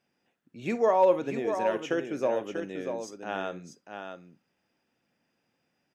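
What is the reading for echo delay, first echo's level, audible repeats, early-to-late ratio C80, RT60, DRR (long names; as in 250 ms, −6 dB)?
50 ms, −17.0 dB, 2, no reverb audible, no reverb audible, no reverb audible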